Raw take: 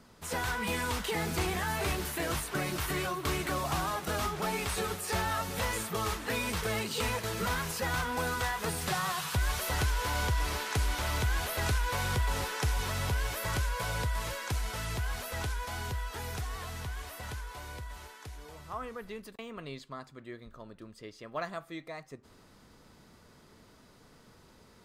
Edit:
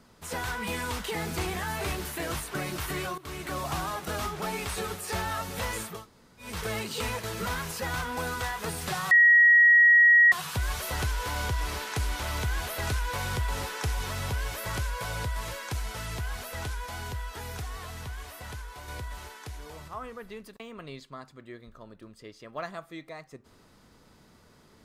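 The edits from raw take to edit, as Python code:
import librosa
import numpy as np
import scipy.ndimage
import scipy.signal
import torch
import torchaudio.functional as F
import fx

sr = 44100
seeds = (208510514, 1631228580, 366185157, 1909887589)

y = fx.edit(x, sr, fx.fade_in_from(start_s=3.18, length_s=0.42, floor_db=-15.0),
    fx.room_tone_fill(start_s=5.95, length_s=0.54, crossfade_s=0.24),
    fx.insert_tone(at_s=9.11, length_s=1.21, hz=1900.0, db=-14.0),
    fx.clip_gain(start_s=17.67, length_s=1.0, db=4.5), tone=tone)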